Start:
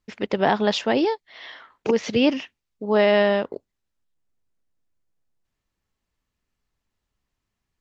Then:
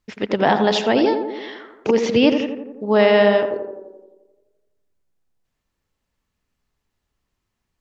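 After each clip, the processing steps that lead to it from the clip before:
tape delay 85 ms, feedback 71%, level −5 dB, low-pass 1,300 Hz
level +3 dB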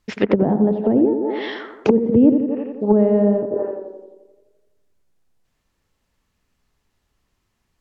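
treble cut that deepens with the level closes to 310 Hz, closed at −15.5 dBFS
level +6 dB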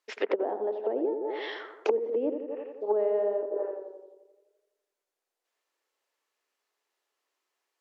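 inverse Chebyshev high-pass filter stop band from 190 Hz, stop band 40 dB
level −7.5 dB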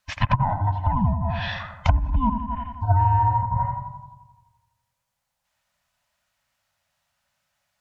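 frequency inversion band by band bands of 500 Hz
level +8 dB

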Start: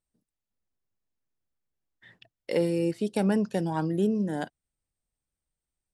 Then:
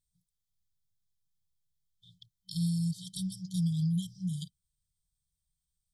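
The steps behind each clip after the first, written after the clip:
brick-wall band-stop 190–3,100 Hz
level +3.5 dB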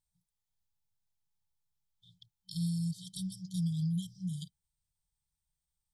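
parametric band 870 Hz +14.5 dB 0.2 octaves
level −3 dB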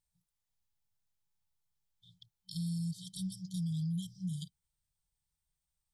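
brickwall limiter −30.5 dBFS, peak gain reduction 4.5 dB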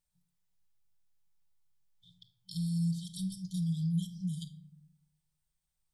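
rectangular room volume 950 cubic metres, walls furnished, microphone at 1 metre

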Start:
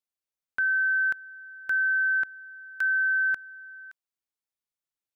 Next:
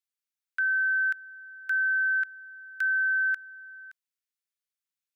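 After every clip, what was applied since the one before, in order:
inverse Chebyshev high-pass filter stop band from 670 Hz, stop band 40 dB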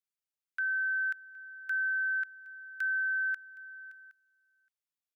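single-tap delay 767 ms −22.5 dB
level −5.5 dB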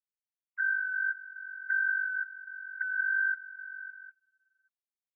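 three sine waves on the formant tracks
level +1 dB

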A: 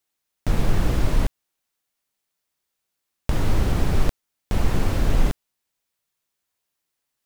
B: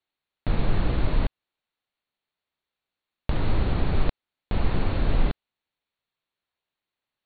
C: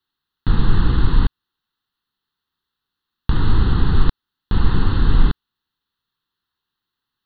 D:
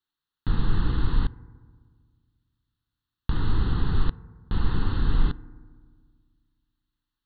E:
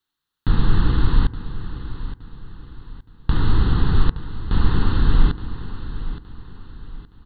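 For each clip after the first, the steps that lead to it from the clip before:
Chebyshev low-pass filter 4,400 Hz, order 8; level −2 dB
phaser with its sweep stopped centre 2,300 Hz, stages 6; level +8.5 dB
feedback delay network reverb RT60 1.7 s, low-frequency decay 1.3×, high-frequency decay 0.25×, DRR 17.5 dB; level −8 dB
repeating echo 869 ms, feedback 38%, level −13 dB; level +6.5 dB

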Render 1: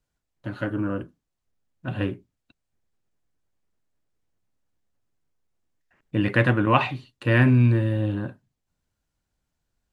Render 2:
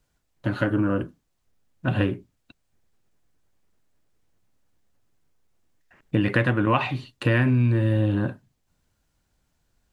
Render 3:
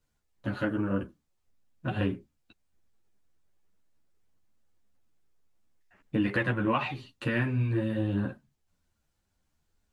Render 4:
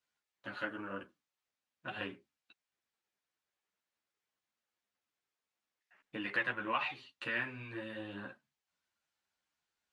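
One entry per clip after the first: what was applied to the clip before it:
downward compressor 4 to 1, threshold −27 dBFS, peak gain reduction 12.5 dB; level +8 dB
string-ensemble chorus; level −3 dB
resonant band-pass 2,400 Hz, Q 0.55; level −2 dB

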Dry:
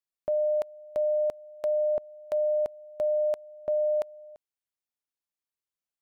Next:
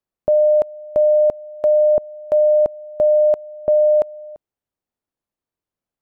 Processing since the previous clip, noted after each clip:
tilt shelving filter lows +9 dB, about 1,300 Hz
level +6.5 dB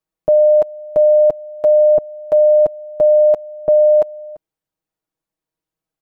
comb filter 6.3 ms, depth 79%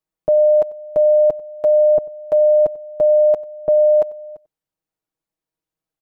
single-tap delay 94 ms −21.5 dB
level −2.5 dB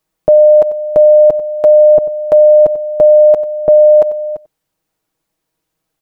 boost into a limiter +15.5 dB
level −1 dB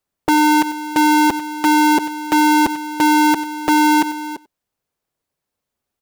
sub-harmonics by changed cycles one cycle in 2, inverted
level −7.5 dB

